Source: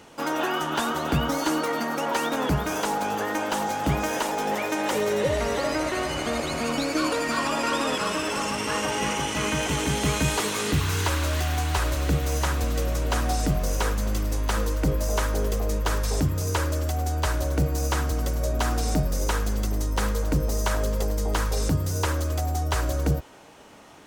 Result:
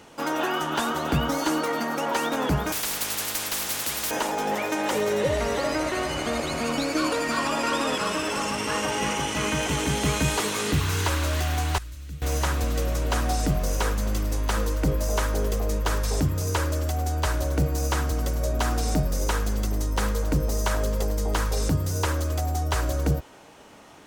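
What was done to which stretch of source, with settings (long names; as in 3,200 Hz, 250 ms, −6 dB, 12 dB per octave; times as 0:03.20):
0:02.72–0:04.11: every bin compressed towards the loudest bin 10 to 1
0:11.78–0:12.22: guitar amp tone stack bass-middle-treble 6-0-2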